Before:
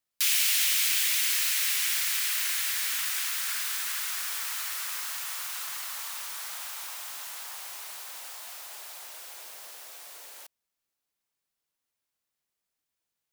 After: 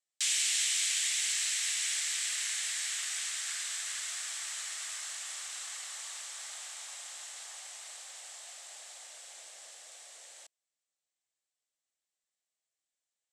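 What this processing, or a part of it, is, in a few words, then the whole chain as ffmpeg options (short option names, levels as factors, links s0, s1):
phone speaker on a table: -af "highpass=f=370:w=0.5412,highpass=f=370:w=1.3066,equalizer=f=420:t=q:w=4:g=-9,equalizer=f=980:t=q:w=4:g=-10,equalizer=f=1400:t=q:w=4:g=-7,equalizer=f=2500:t=q:w=4:g=-4,equalizer=f=4800:t=q:w=4:g=-3,equalizer=f=7800:t=q:w=4:g=8,lowpass=f=8300:w=0.5412,lowpass=f=8300:w=1.3066,volume=0.75"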